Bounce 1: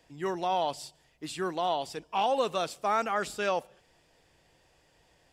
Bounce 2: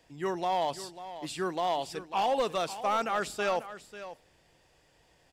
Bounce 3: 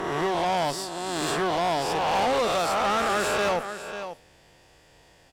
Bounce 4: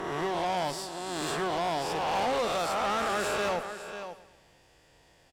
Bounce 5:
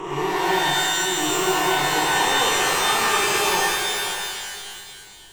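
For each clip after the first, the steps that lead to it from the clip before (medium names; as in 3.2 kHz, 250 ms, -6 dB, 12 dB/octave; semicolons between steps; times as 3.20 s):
hard clipper -22 dBFS, distortion -18 dB; delay 543 ms -13.5 dB
reverse spectral sustain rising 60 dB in 1.68 s; valve stage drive 28 dB, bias 0.5; trim +7.5 dB
feedback delay 113 ms, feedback 49%, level -15 dB; trim -5 dB
rippled EQ curve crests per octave 0.7, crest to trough 13 dB; pitch-shifted reverb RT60 1.9 s, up +12 st, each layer -2 dB, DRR -3 dB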